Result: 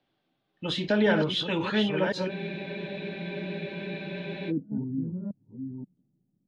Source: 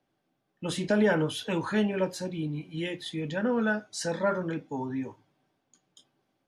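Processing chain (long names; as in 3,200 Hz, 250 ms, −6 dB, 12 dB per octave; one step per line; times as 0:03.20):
delay that plays each chunk backwards 531 ms, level −5 dB
low-pass filter sweep 3,700 Hz → 200 Hz, 0:03.81–0:04.66
frozen spectrum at 0:02.32, 2.18 s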